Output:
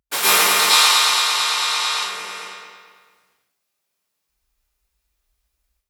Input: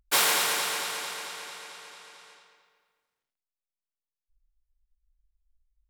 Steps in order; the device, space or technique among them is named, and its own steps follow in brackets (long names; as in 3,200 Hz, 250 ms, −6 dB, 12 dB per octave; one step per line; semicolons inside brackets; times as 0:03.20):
0:00.59–0:01.93: octave-band graphic EQ 125/250/500/1,000/4,000/8,000 Hz −9/−7/−3/+8/+11/+5 dB
far laptop microphone (convolution reverb RT60 0.55 s, pre-delay 103 ms, DRR −9 dB; high-pass filter 100 Hz 12 dB per octave; automatic gain control gain up to 12.5 dB)
level −1 dB